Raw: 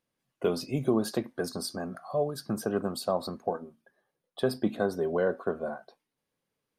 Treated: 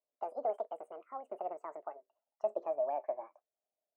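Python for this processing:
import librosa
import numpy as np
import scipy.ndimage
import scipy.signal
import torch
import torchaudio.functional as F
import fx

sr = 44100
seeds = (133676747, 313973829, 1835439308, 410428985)

y = fx.speed_glide(x, sr, from_pct=199, to_pct=143)
y = fx.bandpass_q(y, sr, hz=620.0, q=5.7)
y = F.gain(torch.from_numpy(y), -1.5).numpy()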